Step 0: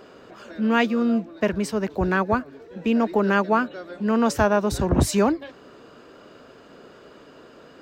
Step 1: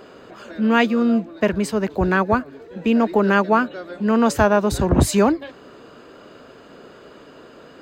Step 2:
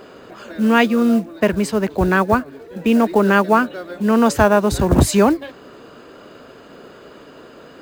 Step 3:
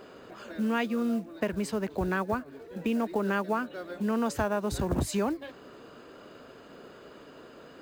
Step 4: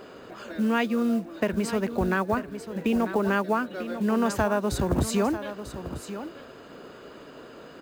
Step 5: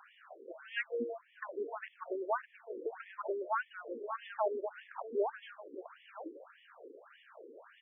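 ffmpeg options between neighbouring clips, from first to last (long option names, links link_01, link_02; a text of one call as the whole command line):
ffmpeg -i in.wav -af "bandreject=frequency=5600:width=10,volume=3.5dB" out.wav
ffmpeg -i in.wav -af "acrusher=bits=7:mode=log:mix=0:aa=0.000001,volume=2.5dB" out.wav
ffmpeg -i in.wav -af "acompressor=threshold=-20dB:ratio=2.5,volume=-8dB" out.wav
ffmpeg -i in.wav -af "aecho=1:1:944:0.266,volume=4dB" out.wav
ffmpeg -i in.wav -af "afftfilt=real='re*between(b*sr/1024,360*pow(2500/360,0.5+0.5*sin(2*PI*1.7*pts/sr))/1.41,360*pow(2500/360,0.5+0.5*sin(2*PI*1.7*pts/sr))*1.41)':imag='im*between(b*sr/1024,360*pow(2500/360,0.5+0.5*sin(2*PI*1.7*pts/sr))/1.41,360*pow(2500/360,0.5+0.5*sin(2*PI*1.7*pts/sr))*1.41)':win_size=1024:overlap=0.75,volume=-4.5dB" out.wav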